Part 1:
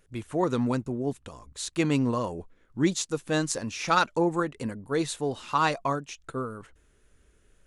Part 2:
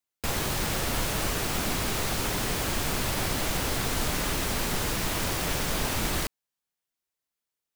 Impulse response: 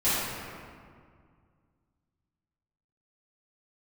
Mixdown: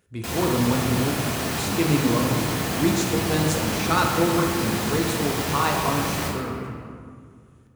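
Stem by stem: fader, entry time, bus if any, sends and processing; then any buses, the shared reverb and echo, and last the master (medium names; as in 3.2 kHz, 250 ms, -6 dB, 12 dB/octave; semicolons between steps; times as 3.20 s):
-2.5 dB, 0.00 s, send -13.5 dB, bass shelf 95 Hz +12 dB
-1.5 dB, 0.00 s, send -10.5 dB, auto duck -7 dB, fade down 0.30 s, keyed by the first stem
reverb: on, RT60 2.0 s, pre-delay 3 ms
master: high-pass 74 Hz 24 dB/octave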